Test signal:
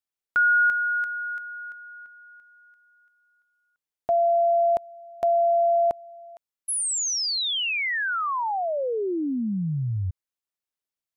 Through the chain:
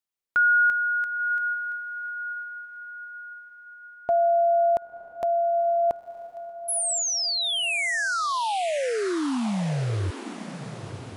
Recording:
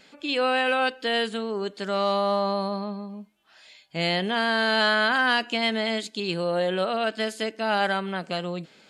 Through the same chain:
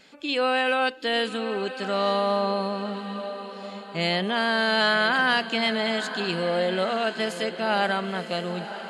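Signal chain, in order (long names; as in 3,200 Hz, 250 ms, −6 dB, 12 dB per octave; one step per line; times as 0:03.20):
feedback delay with all-pass diffusion 992 ms, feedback 50%, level −11.5 dB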